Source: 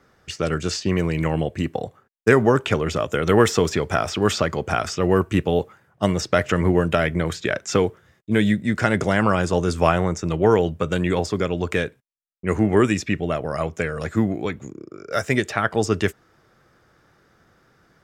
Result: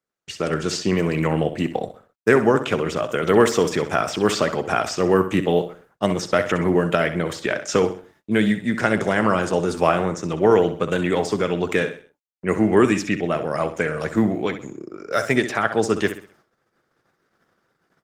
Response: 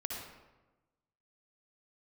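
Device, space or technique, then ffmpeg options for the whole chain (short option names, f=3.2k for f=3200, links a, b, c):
video call: -filter_complex "[0:a]bandreject=f=291.8:t=h:w=4,bandreject=f=583.6:t=h:w=4,bandreject=f=875.4:t=h:w=4,bandreject=f=1.1672k:t=h:w=4,bandreject=f=1.459k:t=h:w=4,asplit=3[a][b][c];[a]afade=t=out:st=5.05:d=0.02[d];[b]highpass=f=59:p=1,afade=t=in:st=5.05:d=0.02,afade=t=out:st=6.03:d=0.02[e];[c]afade=t=in:st=6.03:d=0.02[f];[d][e][f]amix=inputs=3:normalize=0,highpass=160,aecho=1:1:64|128|192|256:0.282|0.11|0.0429|0.0167,dynaudnorm=f=370:g=3:m=3dB,agate=range=-30dB:threshold=-54dB:ratio=16:detection=peak" -ar 48000 -c:a libopus -b:a 20k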